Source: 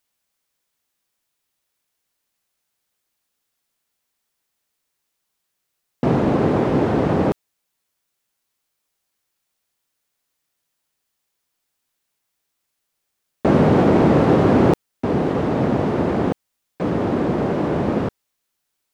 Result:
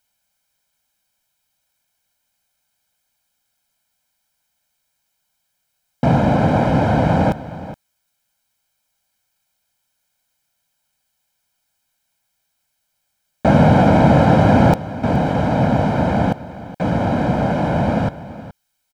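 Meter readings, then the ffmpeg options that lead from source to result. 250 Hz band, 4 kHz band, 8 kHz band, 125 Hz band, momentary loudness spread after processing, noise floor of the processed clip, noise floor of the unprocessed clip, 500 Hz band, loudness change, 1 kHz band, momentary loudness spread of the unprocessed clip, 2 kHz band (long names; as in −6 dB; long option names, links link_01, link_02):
+1.5 dB, +4.5 dB, can't be measured, +5.5 dB, 15 LU, −73 dBFS, −77 dBFS, +0.5 dB, +2.5 dB, +5.5 dB, 10 LU, +5.5 dB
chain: -filter_complex "[0:a]aecho=1:1:1.3:0.78,asplit=2[link_01][link_02];[link_02]aecho=0:1:420:0.168[link_03];[link_01][link_03]amix=inputs=2:normalize=0,volume=2dB"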